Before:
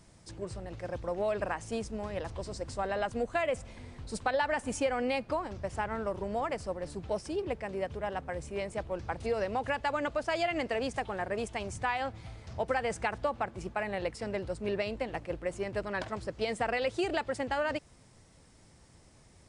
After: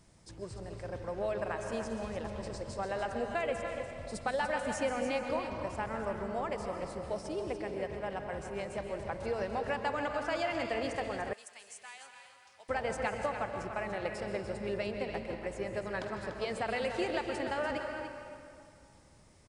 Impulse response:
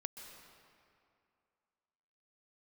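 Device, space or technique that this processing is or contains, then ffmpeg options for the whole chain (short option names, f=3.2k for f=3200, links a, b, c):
cave: -filter_complex "[0:a]aecho=1:1:292:0.355[a];[1:a]atrim=start_sample=2205[b];[a][b]afir=irnorm=-1:irlink=0,asettb=1/sr,asplit=3[c][d][e];[c]atrim=end=11.334[f];[d]atrim=start=11.33:end=12.69,asetpts=PTS-STARTPTS,afade=t=in:d=0.004:c=qsin,afade=t=out:st=1.356:d=0.004:c=qsin,aderivative[g];[e]atrim=start=12.686[h];[f][g]acrossfade=d=0.004:c1=hsin:c2=qsin[i];[i][h]acrossfade=d=0.004:c1=qsin:c2=hsin"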